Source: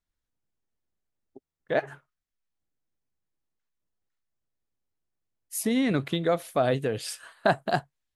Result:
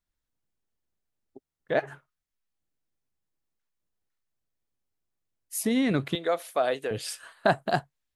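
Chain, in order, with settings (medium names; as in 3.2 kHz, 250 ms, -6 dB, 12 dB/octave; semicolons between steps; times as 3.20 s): 6.15–6.91 s: high-pass 450 Hz 12 dB/octave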